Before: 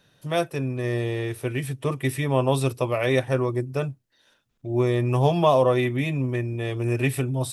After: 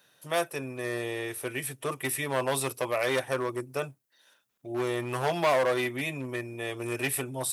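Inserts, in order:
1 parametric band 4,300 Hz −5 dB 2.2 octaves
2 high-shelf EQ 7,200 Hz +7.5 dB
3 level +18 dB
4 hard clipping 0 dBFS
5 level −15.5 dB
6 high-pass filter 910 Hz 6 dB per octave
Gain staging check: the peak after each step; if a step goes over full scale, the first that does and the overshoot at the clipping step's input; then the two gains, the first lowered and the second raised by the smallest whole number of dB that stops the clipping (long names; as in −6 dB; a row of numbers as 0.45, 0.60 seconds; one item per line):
−8.5, −8.5, +9.5, 0.0, −15.5, −12.5 dBFS
step 3, 9.5 dB
step 3 +8 dB, step 5 −5.5 dB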